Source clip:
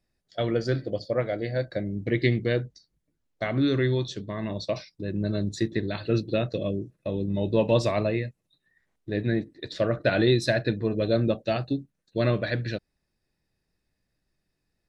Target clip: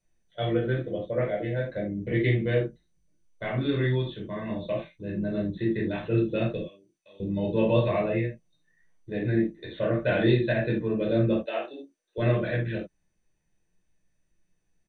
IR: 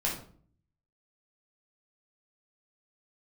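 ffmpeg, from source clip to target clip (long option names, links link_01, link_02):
-filter_complex "[0:a]asettb=1/sr,asplit=3[link_01][link_02][link_03];[link_01]atrim=end=6.594[link_04];[link_02]atrim=start=6.59:end=7.2,asetpts=PTS-STARTPTS,afade=type=in:duration=0.004:curve=qsin,afade=type=out:start_time=0.606:duration=0.004:curve=qsin,aderivative[link_05];[link_03]atrim=start=7.196[link_06];[link_04][link_05]acrossfade=duration=0.004:curve1=hsin:curve2=qsin[link_07];[link_07][link_06]acrossfade=duration=0.004:curve1=qsin:curve2=hsin,asettb=1/sr,asplit=3[link_08][link_09][link_10];[link_08]atrim=end=11.364[link_11];[link_09]atrim=start=11.36:end=12.18,asetpts=PTS-STARTPTS,afade=type=in:duration=0.004:curve=qsin,afade=type=out:start_time=0.816:duration=0.004:curve=qsin,highpass=frequency=370:width=0.5412,highpass=frequency=370:width=1.3066[link_12];[link_10]atrim=start=12.176[link_13];[link_11][link_12]acrossfade=duration=0.004:curve1=hsin:curve2=qsin[link_14];[link_14][link_13]acrossfade=duration=0.004:curve1=qsin:curve2=hsin[link_15];[1:a]atrim=start_sample=2205,afade=type=out:start_time=0.14:duration=0.01,atrim=end_sample=6615[link_16];[link_15][link_16]afir=irnorm=-1:irlink=0,aresample=8000,aresample=44100,volume=-7.5dB" -ar 24000 -c:a mp2 -b:a 128k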